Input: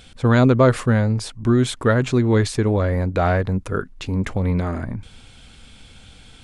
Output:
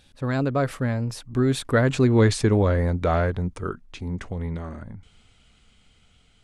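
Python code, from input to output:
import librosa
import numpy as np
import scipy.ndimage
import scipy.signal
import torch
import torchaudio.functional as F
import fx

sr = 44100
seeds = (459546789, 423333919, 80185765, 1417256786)

y = fx.doppler_pass(x, sr, speed_mps=26, closest_m=19.0, pass_at_s=2.37)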